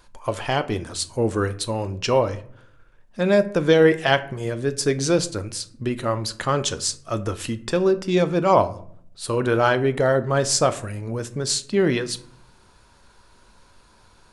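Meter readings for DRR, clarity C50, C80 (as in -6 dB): 10.5 dB, 17.0 dB, 20.5 dB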